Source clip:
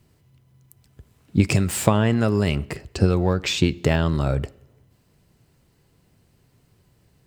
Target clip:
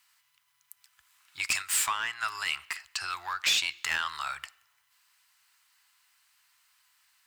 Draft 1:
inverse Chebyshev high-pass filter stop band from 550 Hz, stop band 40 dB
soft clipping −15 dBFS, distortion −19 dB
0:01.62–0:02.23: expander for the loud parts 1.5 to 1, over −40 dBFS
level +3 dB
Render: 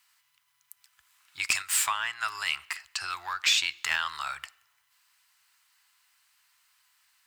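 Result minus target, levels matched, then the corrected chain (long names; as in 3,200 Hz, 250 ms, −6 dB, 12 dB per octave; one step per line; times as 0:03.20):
soft clipping: distortion −7 dB
inverse Chebyshev high-pass filter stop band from 550 Hz, stop band 40 dB
soft clipping −21.5 dBFS, distortion −13 dB
0:01.62–0:02.23: expander for the loud parts 1.5 to 1, over −40 dBFS
level +3 dB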